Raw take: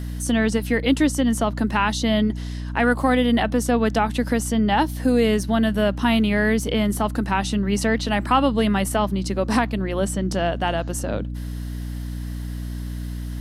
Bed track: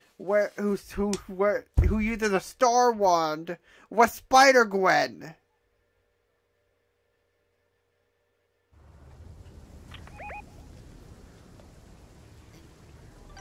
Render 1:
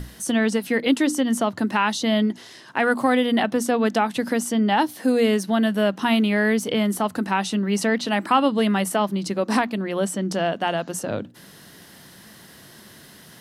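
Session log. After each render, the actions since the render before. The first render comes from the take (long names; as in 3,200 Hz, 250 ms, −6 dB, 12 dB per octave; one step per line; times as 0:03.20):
mains-hum notches 60/120/180/240/300 Hz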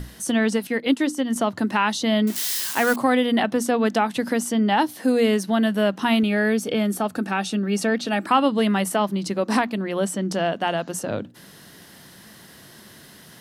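0:00.67–0:01.36: expander for the loud parts, over −30 dBFS
0:02.27–0:02.96: spike at every zero crossing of −18 dBFS
0:06.23–0:08.27: notch comb filter 1,000 Hz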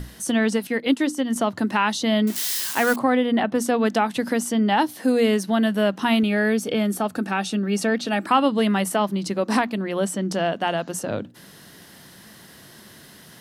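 0:02.99–0:03.55: high-shelf EQ 3,800 Hz −12 dB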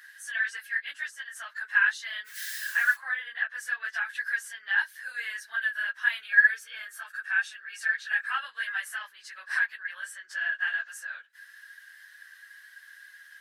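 random phases in long frames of 50 ms
four-pole ladder high-pass 1,600 Hz, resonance 90%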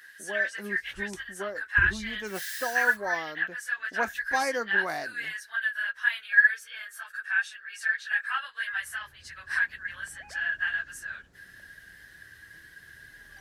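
mix in bed track −11.5 dB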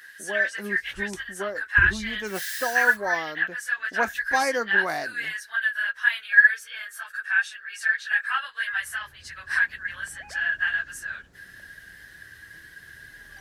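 level +4 dB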